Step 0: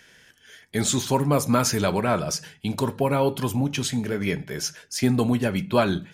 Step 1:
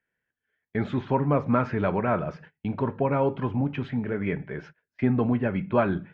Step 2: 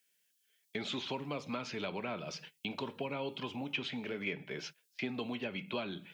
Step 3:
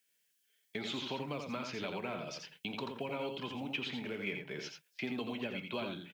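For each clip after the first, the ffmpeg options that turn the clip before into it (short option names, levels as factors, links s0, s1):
-af "lowpass=f=2200:w=0.5412,lowpass=f=2200:w=1.3066,agate=range=0.0562:threshold=0.00794:ratio=16:detection=peak,volume=0.794"
-filter_complex "[0:a]acrossover=split=350|2700[s0][s1][s2];[s0]acompressor=threshold=0.0158:ratio=4[s3];[s1]acompressor=threshold=0.0158:ratio=4[s4];[s2]acompressor=threshold=0.00141:ratio=4[s5];[s3][s4][s5]amix=inputs=3:normalize=0,highpass=180,aexciter=amount=7.5:drive=8.2:freq=2600,volume=0.596"
-af "acrusher=bits=9:mode=log:mix=0:aa=0.000001,aecho=1:1:85:0.531,volume=0.841"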